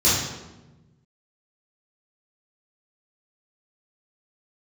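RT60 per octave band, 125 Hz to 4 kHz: 1.9, 1.6, 1.2, 1.0, 0.85, 0.75 seconds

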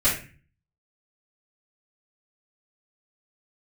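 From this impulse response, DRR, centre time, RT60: −12.5 dB, 33 ms, 0.35 s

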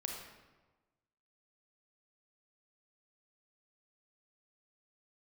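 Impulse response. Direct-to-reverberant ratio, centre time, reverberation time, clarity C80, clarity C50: 0.5 dB, 53 ms, 1.2 s, 4.5 dB, 2.0 dB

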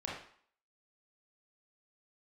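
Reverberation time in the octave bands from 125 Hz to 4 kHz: 0.40, 0.50, 0.50, 0.60, 0.55, 0.50 seconds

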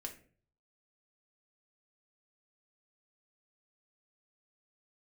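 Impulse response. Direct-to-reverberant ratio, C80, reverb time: 2.0 dB, 16.0 dB, 0.45 s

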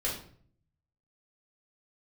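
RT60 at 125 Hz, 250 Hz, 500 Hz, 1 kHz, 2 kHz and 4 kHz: 1.0, 0.75, 0.60, 0.50, 0.45, 0.40 seconds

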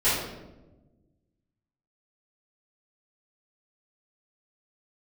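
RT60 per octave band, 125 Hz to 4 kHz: 2.0, 1.8, 1.3, 0.90, 0.75, 0.65 seconds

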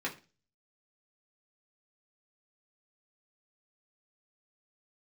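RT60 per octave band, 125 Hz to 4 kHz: 0.55, 0.40, 0.35, 0.30, 0.30, 0.35 seconds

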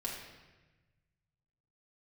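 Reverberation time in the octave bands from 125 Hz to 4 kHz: 2.3, 1.5, 1.2, 1.1, 1.2, 1.0 seconds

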